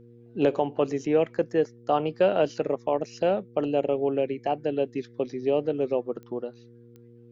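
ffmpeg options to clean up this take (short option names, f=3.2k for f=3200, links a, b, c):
-af "adeclick=t=4,bandreject=f=118.5:t=h:w=4,bandreject=f=237:t=h:w=4,bandreject=f=355.5:t=h:w=4,bandreject=f=474:t=h:w=4"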